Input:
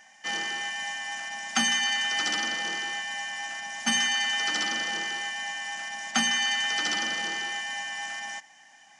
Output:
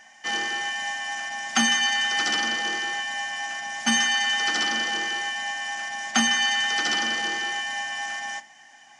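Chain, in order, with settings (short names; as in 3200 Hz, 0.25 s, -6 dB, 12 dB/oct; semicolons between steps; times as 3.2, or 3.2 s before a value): high shelf 7800 Hz -4.5 dB; reverb RT60 0.30 s, pre-delay 3 ms, DRR 9 dB; gain +3.5 dB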